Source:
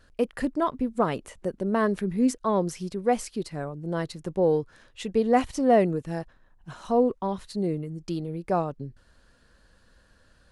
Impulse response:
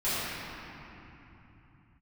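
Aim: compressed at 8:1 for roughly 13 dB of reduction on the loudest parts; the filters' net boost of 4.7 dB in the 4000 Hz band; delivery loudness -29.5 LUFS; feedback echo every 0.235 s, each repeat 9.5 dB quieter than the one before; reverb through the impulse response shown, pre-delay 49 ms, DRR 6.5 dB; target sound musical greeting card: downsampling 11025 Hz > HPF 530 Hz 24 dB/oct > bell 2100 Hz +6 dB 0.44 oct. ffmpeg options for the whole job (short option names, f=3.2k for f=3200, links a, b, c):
-filter_complex "[0:a]equalizer=f=4k:t=o:g=5.5,acompressor=threshold=-29dB:ratio=8,aecho=1:1:235|470|705|940:0.335|0.111|0.0365|0.012,asplit=2[a][b];[1:a]atrim=start_sample=2205,adelay=49[c];[b][c]afir=irnorm=-1:irlink=0,volume=-18.5dB[d];[a][d]amix=inputs=2:normalize=0,aresample=11025,aresample=44100,highpass=f=530:w=0.5412,highpass=f=530:w=1.3066,equalizer=f=2.1k:t=o:w=0.44:g=6,volume=9.5dB"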